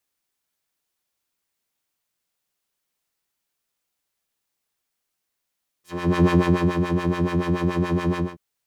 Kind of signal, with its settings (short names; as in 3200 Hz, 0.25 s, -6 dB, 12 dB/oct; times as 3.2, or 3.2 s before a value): synth patch with filter wobble F3, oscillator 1 triangle, oscillator 2 square, interval +12 st, oscillator 2 level -7.5 dB, sub -3 dB, noise -16 dB, filter bandpass, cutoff 450 Hz, Q 0.8, filter envelope 3.5 oct, filter decay 0.17 s, filter sustain 10%, attack 0.411 s, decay 0.54 s, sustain -6 dB, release 0.20 s, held 2.33 s, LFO 7 Hz, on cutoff 1.6 oct